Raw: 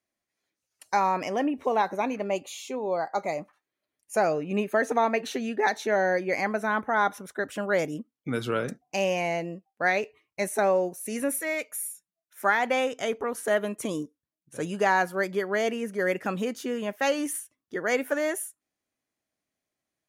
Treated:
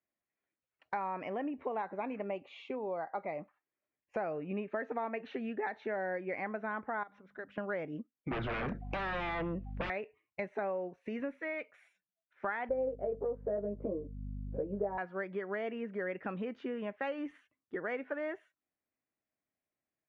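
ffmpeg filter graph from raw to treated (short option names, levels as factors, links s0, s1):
-filter_complex "[0:a]asettb=1/sr,asplit=3[s0][s1][s2];[s0]atrim=end=7.034[s3];[s1]atrim=start=7.03:end=7.58,asetpts=PTS-STARTPTS,afade=t=in:d=0.004:c=qsin,afade=t=out:st=0.546:d=0.004:c=qsin,highshelf=f=4600:g=7,bandreject=f=50:t=h:w=6,bandreject=f=100:t=h:w=6,bandreject=f=150:t=h:w=6,bandreject=f=200:t=h:w=6,bandreject=f=250:t=h:w=6,acompressor=threshold=0.00794:ratio=3:attack=3.2:release=140:knee=1:detection=peak[s4];[s2]atrim=start=7.576[s5];[s3][s4]acrossfade=d=0.004:c1=hsin:c2=qsin[s6];[s6][s5]acrossfade=d=0.004:c1=qsin:c2=hsin,asettb=1/sr,asplit=3[s7][s8][s9];[s7]atrim=end=8.314[s10];[s8]atrim=start=8.31:end=9.9,asetpts=PTS-STARTPTS,afade=t=in:d=0.004:c=qsin,afade=t=out:st=1.586:d=0.004:c=qsin,aeval=exprs='0.266*sin(PI/2*8.91*val(0)/0.266)':c=same,acompressor=threshold=0.0447:ratio=3:attack=3.2:release=140:knee=1:detection=peak,aeval=exprs='val(0)+0.0158*(sin(2*PI*50*n/s)+sin(2*PI*2*50*n/s)/2+sin(2*PI*3*50*n/s)/3+sin(2*PI*4*50*n/s)/4+sin(2*PI*5*50*n/s)/5)':c=same[s11];[s9]atrim=start=9.896[s12];[s10][s11]acrossfade=d=0.004:c1=hsin:c2=qsin[s13];[s13][s12]acrossfade=d=0.004:c1=qsin:c2=hsin,asettb=1/sr,asplit=3[s14][s15][s16];[s14]atrim=end=12.694[s17];[s15]atrim=start=12.69:end=14.98,asetpts=PTS-STARTPTS,afade=t=in:d=0.004:c=qsin,afade=t=out:st=2.286:d=0.004:c=qsin,asplit=2[s18][s19];[s19]adelay=15,volume=0.708[s20];[s18][s20]amix=inputs=2:normalize=0,atrim=end_sample=100989,aeval=exprs='val(0)+0.0126*(sin(2*PI*50*n/s)+sin(2*PI*2*50*n/s)/2+sin(2*PI*3*50*n/s)/3+sin(2*PI*4*50*n/s)/4+sin(2*PI*5*50*n/s)/5)':c=same,lowpass=f=550:t=q:w=2.9[s21];[s16]atrim=start=14.976[s22];[s17][s21]acrossfade=d=0.004:c1=hsin:c2=qsin[s23];[s23][s22]acrossfade=d=0.004:c1=qsin:c2=hsin,agate=range=0.398:threshold=0.00891:ratio=16:detection=peak,lowpass=f=2600:w=0.5412,lowpass=f=2600:w=1.3066,acompressor=threshold=0.01:ratio=3,volume=1.19"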